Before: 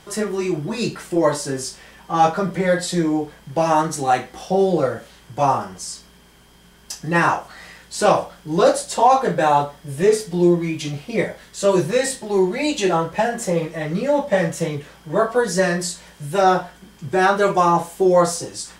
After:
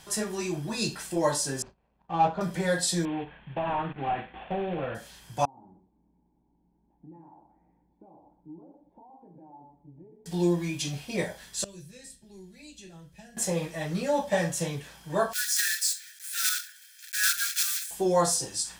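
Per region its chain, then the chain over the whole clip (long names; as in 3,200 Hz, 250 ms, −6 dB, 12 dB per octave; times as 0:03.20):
0:01.62–0:02.41: running median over 25 samples + Bessel low-pass filter 1,700 Hz + noise gate −47 dBFS, range −15 dB
0:03.05–0:04.95: variable-slope delta modulation 16 kbit/s + downward compressor 3 to 1, threshold −19 dBFS
0:05.45–0:10.26: downward compressor 10 to 1, threshold −28 dBFS + formant resonators in series u + single-tap delay 119 ms −10 dB
0:11.64–0:13.37: guitar amp tone stack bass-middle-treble 10-0-1 + multiband upward and downward compressor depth 40%
0:15.33–0:17.91: one scale factor per block 3 bits + Butterworth high-pass 1,400 Hz 96 dB per octave + parametric band 2,900 Hz −6 dB 0.21 octaves
whole clip: high-shelf EQ 2,700 Hz +9 dB; comb filter 1.2 ms, depth 30%; dynamic equaliser 2,100 Hz, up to −4 dB, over −35 dBFS, Q 2.1; level −8 dB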